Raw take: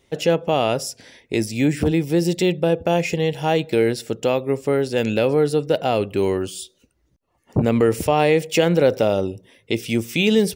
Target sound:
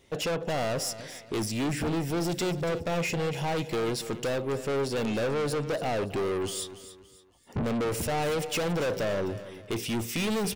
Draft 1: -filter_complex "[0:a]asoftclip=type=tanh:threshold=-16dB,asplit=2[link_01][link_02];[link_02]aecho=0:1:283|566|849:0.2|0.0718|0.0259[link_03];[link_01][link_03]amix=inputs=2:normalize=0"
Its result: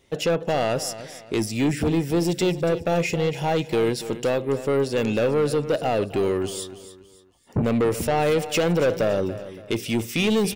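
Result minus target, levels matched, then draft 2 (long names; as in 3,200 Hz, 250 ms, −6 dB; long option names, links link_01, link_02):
soft clipping: distortion −7 dB
-filter_complex "[0:a]asoftclip=type=tanh:threshold=-26.5dB,asplit=2[link_01][link_02];[link_02]aecho=0:1:283|566|849:0.2|0.0718|0.0259[link_03];[link_01][link_03]amix=inputs=2:normalize=0"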